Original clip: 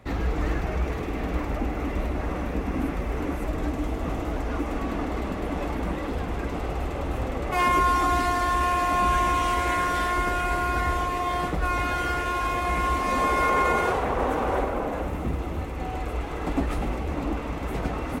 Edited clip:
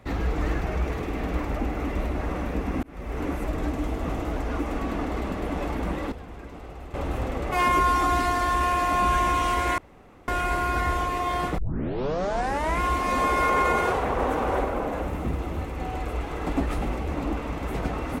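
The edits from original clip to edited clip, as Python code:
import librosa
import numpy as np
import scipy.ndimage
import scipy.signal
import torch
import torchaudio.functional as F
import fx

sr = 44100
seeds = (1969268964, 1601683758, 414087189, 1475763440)

y = fx.edit(x, sr, fx.fade_in_span(start_s=2.83, length_s=0.41),
    fx.clip_gain(start_s=6.12, length_s=0.82, db=-11.0),
    fx.room_tone_fill(start_s=9.78, length_s=0.5),
    fx.tape_start(start_s=11.58, length_s=1.22), tone=tone)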